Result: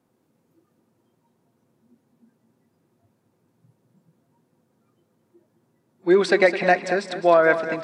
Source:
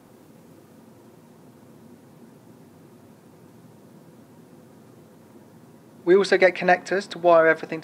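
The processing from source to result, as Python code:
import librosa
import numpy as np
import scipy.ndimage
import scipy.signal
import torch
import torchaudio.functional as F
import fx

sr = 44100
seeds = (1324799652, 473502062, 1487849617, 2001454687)

p1 = fx.noise_reduce_blind(x, sr, reduce_db=18)
y = p1 + fx.echo_feedback(p1, sr, ms=211, feedback_pct=41, wet_db=-11.5, dry=0)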